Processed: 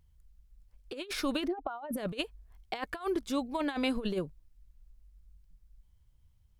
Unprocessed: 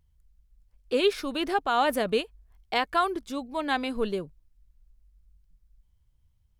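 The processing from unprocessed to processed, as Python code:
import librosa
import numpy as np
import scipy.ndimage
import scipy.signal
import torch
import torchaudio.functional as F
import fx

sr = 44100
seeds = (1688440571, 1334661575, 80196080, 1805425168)

y = fx.spec_expand(x, sr, power=1.9, at=(1.46, 1.96), fade=0.02)
y = fx.over_compress(y, sr, threshold_db=-30.0, ratio=-0.5)
y = y * 10.0 ** (-2.5 / 20.0)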